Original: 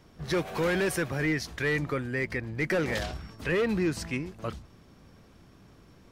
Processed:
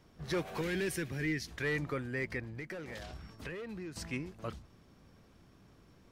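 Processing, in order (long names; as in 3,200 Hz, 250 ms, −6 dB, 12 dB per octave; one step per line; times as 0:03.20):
0:00.61–0:01.51: flat-topped bell 840 Hz −9.5 dB
0:02.43–0:03.96: downward compressor 10 to 1, threshold −34 dBFS, peak gain reduction 11.5 dB
level −6 dB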